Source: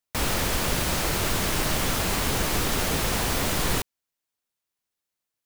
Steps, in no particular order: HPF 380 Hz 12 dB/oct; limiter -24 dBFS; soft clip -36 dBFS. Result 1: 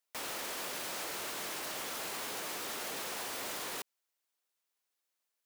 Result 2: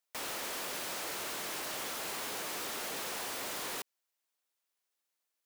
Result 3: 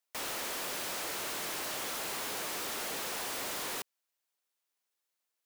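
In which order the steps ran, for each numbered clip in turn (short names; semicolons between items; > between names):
limiter > HPF > soft clip; HPF > limiter > soft clip; HPF > soft clip > limiter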